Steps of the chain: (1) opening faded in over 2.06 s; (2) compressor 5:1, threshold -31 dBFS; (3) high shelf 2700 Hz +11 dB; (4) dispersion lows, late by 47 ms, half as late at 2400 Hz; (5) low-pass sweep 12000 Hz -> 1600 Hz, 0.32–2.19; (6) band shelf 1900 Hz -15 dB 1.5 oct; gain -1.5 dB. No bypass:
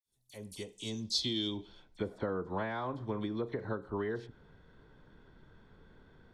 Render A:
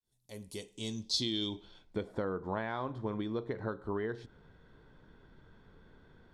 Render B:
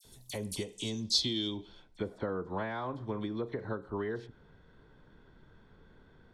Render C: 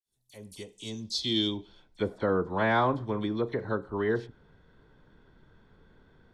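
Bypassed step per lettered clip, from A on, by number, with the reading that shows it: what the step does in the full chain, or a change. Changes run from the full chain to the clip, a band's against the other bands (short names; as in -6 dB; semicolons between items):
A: 4, momentary loudness spread change -1 LU; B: 1, 8 kHz band +4.5 dB; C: 2, mean gain reduction 3.5 dB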